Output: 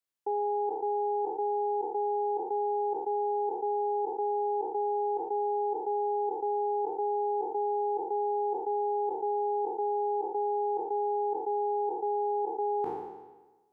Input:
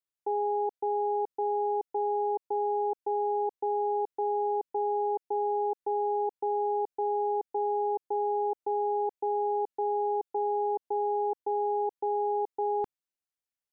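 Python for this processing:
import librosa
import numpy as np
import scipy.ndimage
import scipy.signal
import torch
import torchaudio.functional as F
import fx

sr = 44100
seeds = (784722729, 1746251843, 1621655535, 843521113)

y = fx.spec_trails(x, sr, decay_s=1.21)
y = scipy.signal.sosfilt(scipy.signal.butter(2, 110.0, 'highpass', fs=sr, output='sos'), y)
y = y * librosa.db_to_amplitude(-1.0)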